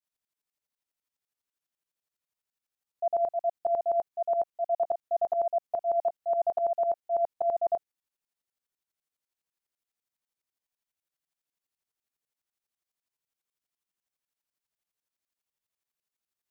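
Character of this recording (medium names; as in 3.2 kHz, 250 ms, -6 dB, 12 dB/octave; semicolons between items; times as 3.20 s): tremolo saw up 12 Hz, depth 85%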